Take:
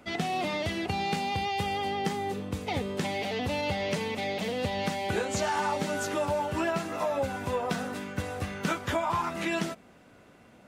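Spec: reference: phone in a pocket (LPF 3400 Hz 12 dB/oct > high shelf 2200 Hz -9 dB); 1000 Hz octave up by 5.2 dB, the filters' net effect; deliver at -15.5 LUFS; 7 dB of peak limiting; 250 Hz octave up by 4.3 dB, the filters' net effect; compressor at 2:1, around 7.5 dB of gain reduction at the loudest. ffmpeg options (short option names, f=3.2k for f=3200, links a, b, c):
-af "equalizer=f=250:t=o:g=5.5,equalizer=f=1k:t=o:g=8,acompressor=threshold=-33dB:ratio=2,alimiter=limit=-24dB:level=0:latency=1,lowpass=3.4k,highshelf=f=2.2k:g=-9,volume=19dB"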